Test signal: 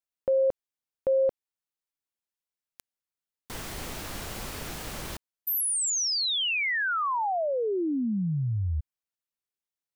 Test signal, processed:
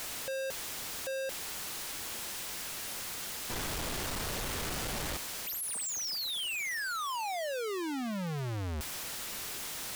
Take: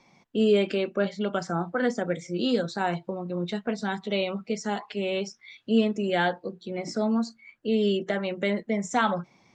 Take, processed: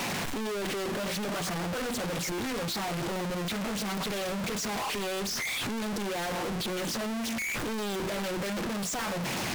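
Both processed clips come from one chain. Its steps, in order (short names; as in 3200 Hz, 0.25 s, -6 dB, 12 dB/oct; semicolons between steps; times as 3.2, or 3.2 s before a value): infinite clipping; Doppler distortion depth 0.61 ms; gain -4.5 dB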